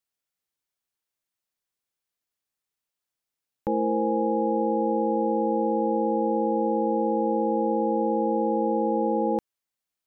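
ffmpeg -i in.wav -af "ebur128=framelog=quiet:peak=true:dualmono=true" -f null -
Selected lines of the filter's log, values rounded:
Integrated loudness:
  I:         -21.8 LUFS
  Threshold: -31.8 LUFS
Loudness range:
  LRA:         7.5 LU
  Threshold: -42.8 LUFS
  LRA low:   -29.1 LUFS
  LRA high:  -21.5 LUFS
True peak:
  Peak:      -14.0 dBFS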